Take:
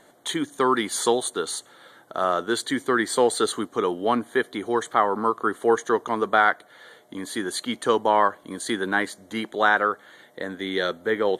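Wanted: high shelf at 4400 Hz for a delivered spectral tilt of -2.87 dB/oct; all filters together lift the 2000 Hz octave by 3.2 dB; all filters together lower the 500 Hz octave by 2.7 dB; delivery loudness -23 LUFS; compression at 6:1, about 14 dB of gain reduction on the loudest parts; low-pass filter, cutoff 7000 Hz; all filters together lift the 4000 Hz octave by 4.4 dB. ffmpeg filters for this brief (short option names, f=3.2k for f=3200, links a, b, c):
-af "lowpass=7k,equalizer=f=500:t=o:g=-3.5,equalizer=f=2k:t=o:g=4.5,equalizer=f=4k:t=o:g=7,highshelf=f=4.4k:g=-6,acompressor=threshold=-28dB:ratio=6,volume=9.5dB"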